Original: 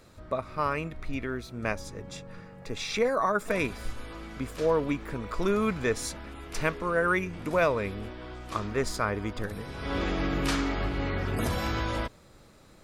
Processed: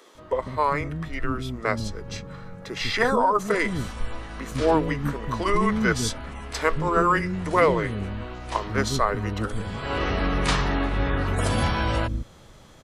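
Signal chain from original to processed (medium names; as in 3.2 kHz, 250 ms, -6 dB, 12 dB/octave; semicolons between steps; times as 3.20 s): bands offset in time highs, lows 150 ms, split 320 Hz; formant shift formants -3 st; trim +6.5 dB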